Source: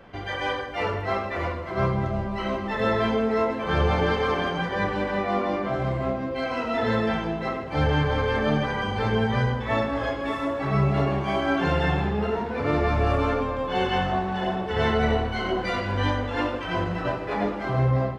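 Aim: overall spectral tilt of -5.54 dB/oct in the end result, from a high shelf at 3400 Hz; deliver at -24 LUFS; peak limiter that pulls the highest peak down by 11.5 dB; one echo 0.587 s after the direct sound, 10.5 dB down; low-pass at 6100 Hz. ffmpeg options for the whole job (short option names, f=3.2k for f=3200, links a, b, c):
-af "lowpass=6.1k,highshelf=f=3.4k:g=-7.5,alimiter=limit=-23.5dB:level=0:latency=1,aecho=1:1:587:0.299,volume=7.5dB"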